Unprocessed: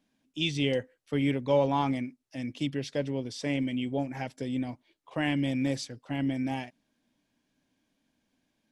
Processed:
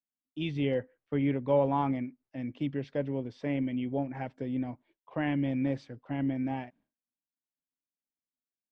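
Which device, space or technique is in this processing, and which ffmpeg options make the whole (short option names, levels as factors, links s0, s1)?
hearing-loss simulation: -af "lowpass=1800,agate=range=0.0224:threshold=0.00141:ratio=3:detection=peak,volume=0.891"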